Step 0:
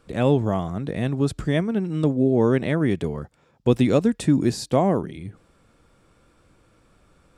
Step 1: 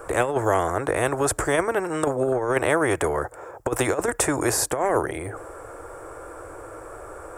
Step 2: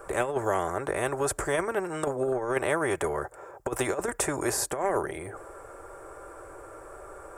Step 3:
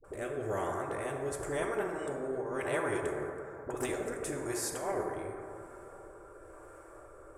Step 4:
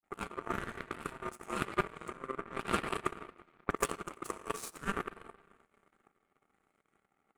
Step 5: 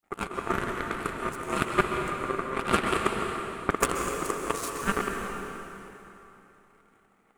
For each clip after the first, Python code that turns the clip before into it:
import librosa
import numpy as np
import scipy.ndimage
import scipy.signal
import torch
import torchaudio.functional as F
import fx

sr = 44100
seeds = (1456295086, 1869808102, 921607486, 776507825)

y1 = fx.curve_eq(x, sr, hz=(110.0, 210.0, 320.0, 470.0, 1600.0, 2500.0, 4000.0, 8000.0), db=(0, -23, 7, 15, 9, -5, -14, 8))
y1 = fx.over_compress(y1, sr, threshold_db=-11.0, ratio=-0.5)
y1 = fx.spectral_comp(y1, sr, ratio=2.0)
y1 = F.gain(torch.from_numpy(y1), -7.5).numpy()
y2 = y1 + 0.32 * np.pad(y1, (int(5.1 * sr / 1000.0), 0))[:len(y1)]
y2 = F.gain(torch.from_numpy(y2), -6.0).numpy()
y3 = fx.dispersion(y2, sr, late='highs', ms=43.0, hz=490.0)
y3 = fx.rotary(y3, sr, hz=1.0)
y3 = fx.rev_plate(y3, sr, seeds[0], rt60_s=2.9, hf_ratio=0.3, predelay_ms=0, drr_db=2.0)
y3 = F.gain(torch.from_numpy(y3), -7.0).numpy()
y4 = fx.transient(y3, sr, attack_db=8, sustain_db=-5)
y4 = fx.power_curve(y4, sr, exponent=2.0)
y4 = y4 * np.sin(2.0 * np.pi * 790.0 * np.arange(len(y4)) / sr)
y4 = F.gain(torch.from_numpy(y4), 7.5).numpy()
y5 = fx.rev_plate(y4, sr, seeds[1], rt60_s=3.2, hf_ratio=0.85, predelay_ms=115, drr_db=2.5)
y5 = F.gain(torch.from_numpy(y5), 7.5).numpy()